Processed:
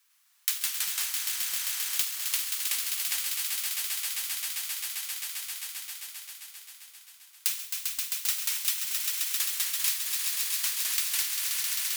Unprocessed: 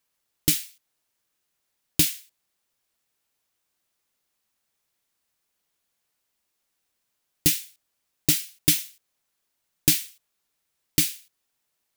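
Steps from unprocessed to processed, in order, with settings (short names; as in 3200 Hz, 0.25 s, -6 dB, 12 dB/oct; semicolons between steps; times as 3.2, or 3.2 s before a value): block floating point 3-bit; inverse Chebyshev high-pass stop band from 550 Hz, stop band 40 dB; echoes that change speed 0.1 s, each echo -2 st, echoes 3; on a send: swelling echo 0.132 s, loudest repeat 5, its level -9.5 dB; on the sum: compressor 3:1, threshold -41 dBFS, peak gain reduction 20.5 dB; gain +9 dB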